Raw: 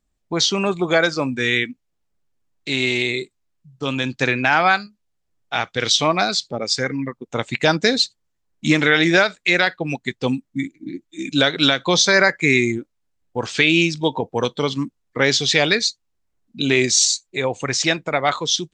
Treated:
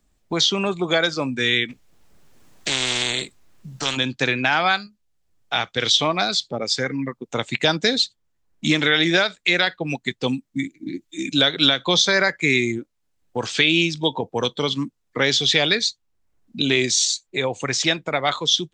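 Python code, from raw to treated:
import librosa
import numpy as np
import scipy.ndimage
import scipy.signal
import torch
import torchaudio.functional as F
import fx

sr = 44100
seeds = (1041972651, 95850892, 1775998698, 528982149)

y = fx.spectral_comp(x, sr, ratio=4.0, at=(1.68, 3.96), fade=0.02)
y = fx.dynamic_eq(y, sr, hz=3400.0, q=4.2, threshold_db=-37.0, ratio=4.0, max_db=8)
y = fx.band_squash(y, sr, depth_pct=40)
y = y * librosa.db_to_amplitude(-3.0)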